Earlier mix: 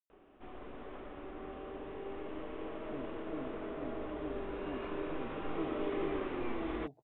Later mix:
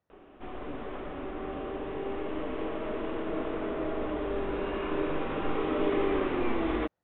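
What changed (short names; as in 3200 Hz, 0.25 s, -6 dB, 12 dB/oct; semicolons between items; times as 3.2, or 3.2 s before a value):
speech: entry -2.25 s; background +8.5 dB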